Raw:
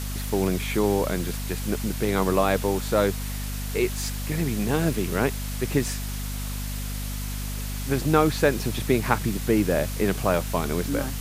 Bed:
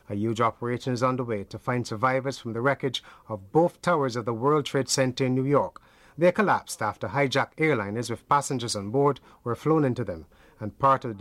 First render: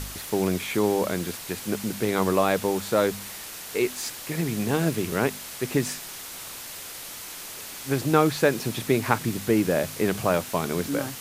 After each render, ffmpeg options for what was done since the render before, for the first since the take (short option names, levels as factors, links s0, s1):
-af "bandreject=f=50:t=h:w=4,bandreject=f=100:t=h:w=4,bandreject=f=150:t=h:w=4,bandreject=f=200:t=h:w=4,bandreject=f=250:t=h:w=4"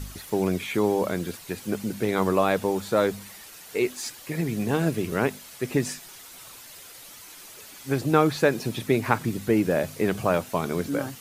-af "afftdn=nr=9:nf=-39"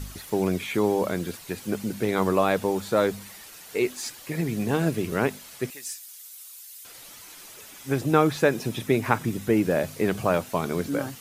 -filter_complex "[0:a]asettb=1/sr,asplit=3[s0][s1][s2];[s0]atrim=end=5.704[s3];[s1]atrim=start=5.7:end=6.85,asetpts=PTS-STARTPTS,afade=t=in:d=0.004:c=qsin,afade=t=out:st=1.146:d=0.004:c=qsin,aderivative[s4];[s2]atrim=start=6.846[s5];[s3][s4]acrossfade=d=0.004:c1=hsin:c2=qsin[s6];[s6][s5]acrossfade=d=0.004:c1=qsin:c2=hsin,asettb=1/sr,asplit=3[s7][s8][s9];[s7]atrim=end=7.564[s10];[s8]atrim=start=7.56:end=9.62,asetpts=PTS-STARTPTS,afade=t=in:d=0.004:c=qsin,afade=t=out:st=2.056:d=0.004:c=qsin,bandreject=f=4400:w=11[s11];[s9]atrim=start=9.616[s12];[s10][s11]acrossfade=d=0.004:c1=hsin:c2=qsin[s13];[s13][s12]acrossfade=d=0.004:c1=qsin:c2=hsin"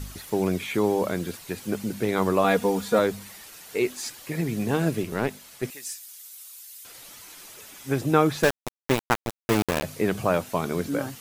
-filter_complex "[0:a]asettb=1/sr,asplit=3[s0][s1][s2];[s0]atrim=end=2.444[s3];[s1]atrim=start=2.44:end=2.99,asetpts=PTS-STARTPTS,afade=t=in:d=0.004:c=qsin,afade=t=out:st=0.546:d=0.004:c=qsin,aecho=1:1:4.2:0.81,atrim=end_sample=24255[s4];[s2]atrim=start=2.986[s5];[s3][s4]acrossfade=d=0.004:c1=hsin:c2=qsin[s6];[s6][s5]acrossfade=d=0.004:c1=qsin:c2=hsin,asettb=1/sr,asplit=3[s7][s8][s9];[s7]atrim=end=5.034[s10];[s8]atrim=start=5.03:end=5.63,asetpts=PTS-STARTPTS,afade=t=in:d=0.004:c=qsin,afade=t=out:st=0.596:d=0.004:c=qsin,aeval=exprs='(tanh(5.62*val(0)+0.6)-tanh(0.6))/5.62':c=same[s11];[s9]atrim=start=5.626[s12];[s10][s11]acrossfade=d=0.004:c1=hsin:c2=qsin[s13];[s13][s12]acrossfade=d=0.004:c1=qsin:c2=hsin,asettb=1/sr,asplit=3[s14][s15][s16];[s14]atrim=end=8.434[s17];[s15]atrim=start=8.43:end=9.83,asetpts=PTS-STARTPTS,afade=t=in:d=0.004:c=qsin,afade=t=out:st=1.396:d=0.004:c=qsin,aeval=exprs='val(0)*gte(abs(val(0)),0.119)':c=same[s18];[s16]atrim=start=9.826[s19];[s17][s18]acrossfade=d=0.004:c1=hsin:c2=qsin[s20];[s20][s19]acrossfade=d=0.004:c1=qsin:c2=hsin"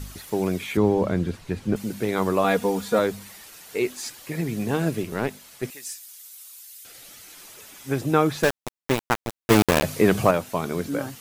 -filter_complex "[0:a]asettb=1/sr,asplit=3[s0][s1][s2];[s0]atrim=end=0.774[s3];[s1]atrim=start=0.77:end=1.76,asetpts=PTS-STARTPTS,afade=t=in:d=0.004:c=qsin,afade=t=out:st=0.986:d=0.004:c=qsin,aemphasis=mode=reproduction:type=bsi[s4];[s2]atrim=start=1.756[s5];[s3][s4]acrossfade=d=0.004:c1=hsin:c2=qsin[s6];[s6][s5]acrossfade=d=0.004:c1=qsin:c2=hsin,asettb=1/sr,asplit=3[s7][s8][s9];[s7]atrim=end=6.734[s10];[s8]atrim=start=6.73:end=7.35,asetpts=PTS-STARTPTS,afade=t=in:d=0.004:c=qsin,afade=t=out:st=0.616:d=0.004:c=qsin,equalizer=f=1000:w=5.7:g=-11[s11];[s9]atrim=start=7.346[s12];[s10][s11]acrossfade=d=0.004:c1=hsin:c2=qsin[s13];[s13][s12]acrossfade=d=0.004:c1=qsin:c2=hsin,asettb=1/sr,asplit=3[s14][s15][s16];[s14]atrim=end=9.504[s17];[s15]atrim=start=9.5:end=10.31,asetpts=PTS-STARTPTS,afade=t=in:d=0.004:c=qsin,afade=t=out:st=0.806:d=0.004:c=qsin,acontrast=75[s18];[s16]atrim=start=10.306[s19];[s17][s18]acrossfade=d=0.004:c1=hsin:c2=qsin[s20];[s20][s19]acrossfade=d=0.004:c1=qsin:c2=hsin"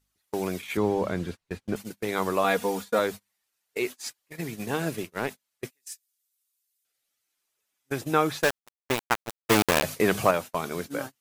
-af "lowshelf=f=450:g=-8.5,agate=range=0.02:threshold=0.0224:ratio=16:detection=peak"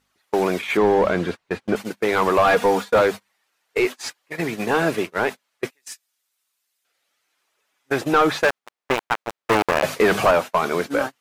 -filter_complex "[0:a]asplit=2[s0][s1];[s1]highpass=f=720:p=1,volume=15.8,asoftclip=type=tanh:threshold=0.562[s2];[s0][s2]amix=inputs=2:normalize=0,lowpass=f=1400:p=1,volume=0.501"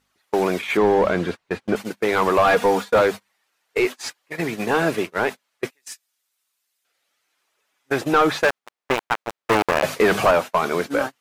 -af anull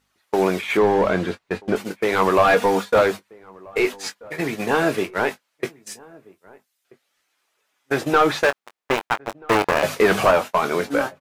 -filter_complex "[0:a]asplit=2[s0][s1];[s1]adelay=21,volume=0.316[s2];[s0][s2]amix=inputs=2:normalize=0,asplit=2[s3][s4];[s4]adelay=1283,volume=0.0631,highshelf=f=4000:g=-28.9[s5];[s3][s5]amix=inputs=2:normalize=0"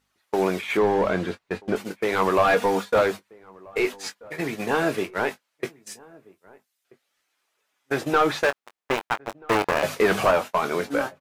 -af "volume=0.668"